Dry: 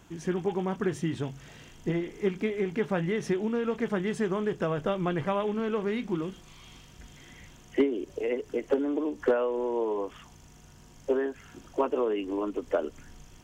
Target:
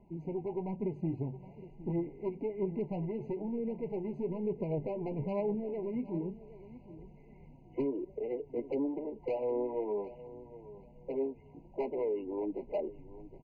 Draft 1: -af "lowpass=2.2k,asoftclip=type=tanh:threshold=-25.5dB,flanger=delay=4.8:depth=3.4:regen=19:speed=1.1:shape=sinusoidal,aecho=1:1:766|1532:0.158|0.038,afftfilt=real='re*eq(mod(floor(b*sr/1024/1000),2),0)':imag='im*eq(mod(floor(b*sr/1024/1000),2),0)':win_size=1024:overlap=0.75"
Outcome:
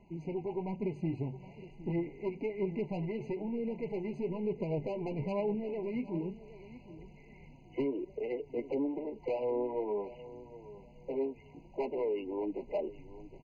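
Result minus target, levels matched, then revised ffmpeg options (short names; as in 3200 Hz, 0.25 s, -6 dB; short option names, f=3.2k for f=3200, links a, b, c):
2000 Hz band +7.0 dB
-af "lowpass=1k,asoftclip=type=tanh:threshold=-25.5dB,flanger=delay=4.8:depth=3.4:regen=19:speed=1.1:shape=sinusoidal,aecho=1:1:766|1532:0.158|0.038,afftfilt=real='re*eq(mod(floor(b*sr/1024/1000),2),0)':imag='im*eq(mod(floor(b*sr/1024/1000),2),0)':win_size=1024:overlap=0.75"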